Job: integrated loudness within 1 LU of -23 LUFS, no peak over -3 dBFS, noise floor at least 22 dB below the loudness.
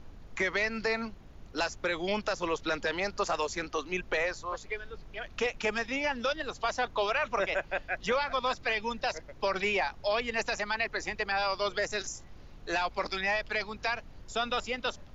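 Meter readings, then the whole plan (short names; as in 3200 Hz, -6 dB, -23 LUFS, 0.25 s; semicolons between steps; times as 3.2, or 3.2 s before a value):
noise floor -51 dBFS; noise floor target -54 dBFS; loudness -31.5 LUFS; peak -19.5 dBFS; loudness target -23.0 LUFS
-> noise print and reduce 6 dB; gain +8.5 dB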